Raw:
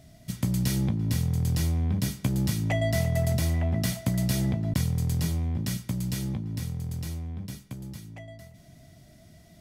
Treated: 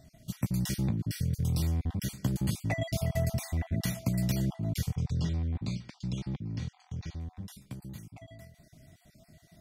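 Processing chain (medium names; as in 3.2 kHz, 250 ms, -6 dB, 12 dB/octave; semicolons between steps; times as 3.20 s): random holes in the spectrogram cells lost 34%; 4.95–7.21 s: low-pass 5.6 kHz 24 dB/octave; trim -3 dB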